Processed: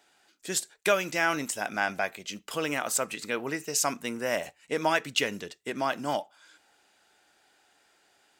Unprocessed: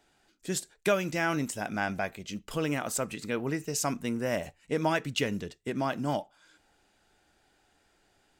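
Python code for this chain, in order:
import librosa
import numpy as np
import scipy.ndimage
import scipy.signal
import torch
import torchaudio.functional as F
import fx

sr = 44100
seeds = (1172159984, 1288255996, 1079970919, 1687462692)

y = fx.highpass(x, sr, hz=660.0, slope=6)
y = F.gain(torch.from_numpy(y), 5.0).numpy()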